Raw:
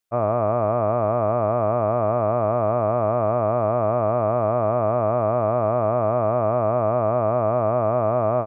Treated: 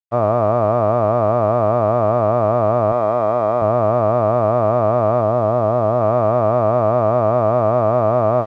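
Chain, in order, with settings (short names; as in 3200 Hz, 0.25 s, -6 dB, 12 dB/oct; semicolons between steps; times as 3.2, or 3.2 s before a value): 2.92–3.62 HPF 280 Hz 6 dB/oct; 5.21–6.01 high shelf 2200 Hz -9.5 dB; crossover distortion -50 dBFS; air absorption 73 m; gain +5.5 dB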